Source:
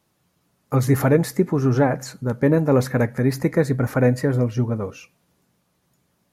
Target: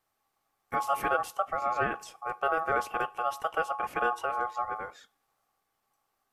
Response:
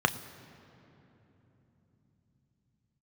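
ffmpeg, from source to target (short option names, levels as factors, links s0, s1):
-af "aeval=exprs='val(0)*sin(2*PI*970*n/s)':c=same,volume=0.376" -ar 48000 -c:a mp2 -b:a 128k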